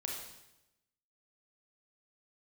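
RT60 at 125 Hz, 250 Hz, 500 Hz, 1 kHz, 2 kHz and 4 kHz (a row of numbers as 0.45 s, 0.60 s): 1.1 s, 1.0 s, 0.95 s, 0.85 s, 0.85 s, 0.85 s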